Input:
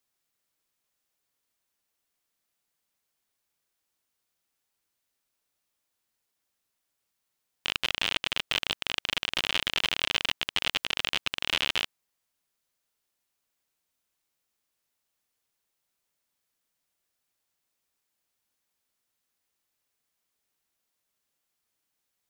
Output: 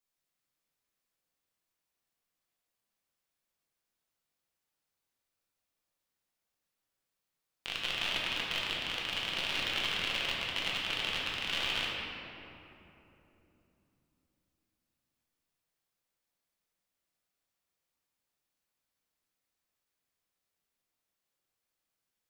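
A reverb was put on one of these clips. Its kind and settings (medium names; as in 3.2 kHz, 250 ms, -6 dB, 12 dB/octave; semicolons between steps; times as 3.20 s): simulated room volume 150 m³, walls hard, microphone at 0.76 m; trim -9.5 dB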